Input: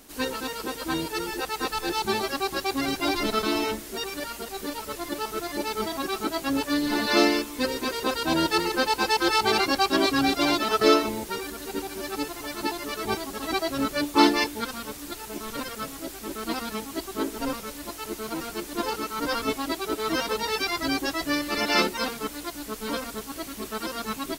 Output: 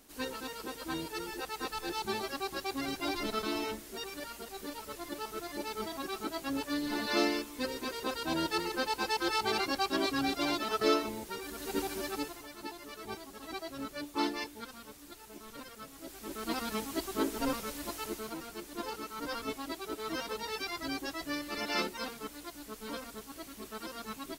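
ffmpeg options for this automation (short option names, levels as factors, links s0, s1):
-af "volume=2.99,afade=t=in:st=11.41:d=0.42:silence=0.421697,afade=t=out:st=11.83:d=0.65:silence=0.237137,afade=t=in:st=15.9:d=0.89:silence=0.281838,afade=t=out:st=17.97:d=0.42:silence=0.421697"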